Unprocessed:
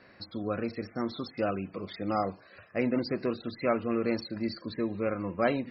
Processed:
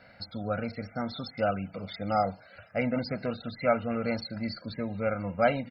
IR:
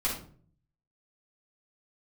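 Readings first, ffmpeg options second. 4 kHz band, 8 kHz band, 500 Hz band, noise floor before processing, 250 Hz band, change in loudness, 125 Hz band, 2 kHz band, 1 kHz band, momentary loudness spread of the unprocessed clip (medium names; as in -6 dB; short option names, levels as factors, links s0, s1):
+2.0 dB, no reading, +1.0 dB, -57 dBFS, -1.5 dB, +1.0 dB, +3.5 dB, +2.5 dB, +3.5 dB, 8 LU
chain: -af "aecho=1:1:1.4:0.81"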